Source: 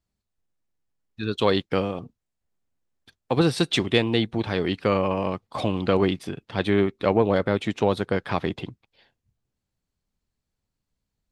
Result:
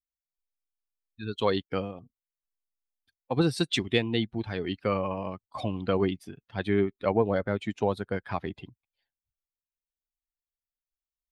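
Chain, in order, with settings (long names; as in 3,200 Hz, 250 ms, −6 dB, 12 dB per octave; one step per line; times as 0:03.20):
spectral dynamics exaggerated over time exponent 1.5
level −2.5 dB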